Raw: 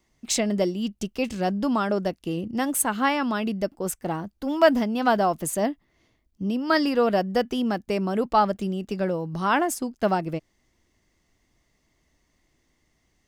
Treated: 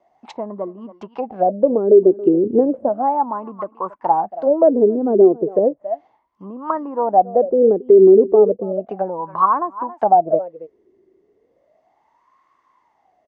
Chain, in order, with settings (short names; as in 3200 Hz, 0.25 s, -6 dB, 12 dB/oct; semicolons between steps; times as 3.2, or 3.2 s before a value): echo 0.276 s -21 dB; treble ducked by the level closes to 470 Hz, closed at -22 dBFS; 2.45–2.89 low shelf 330 Hz +7.5 dB; wah 0.34 Hz 380–1100 Hz, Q 14; maximiser +30.5 dB; gain -2 dB